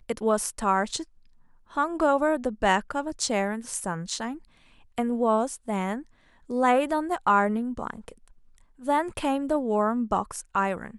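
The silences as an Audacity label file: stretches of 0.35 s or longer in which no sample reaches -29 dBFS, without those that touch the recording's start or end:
1.020000	1.770000	silence
4.320000	4.980000	silence
5.980000	6.500000	silence
8.090000	8.870000	silence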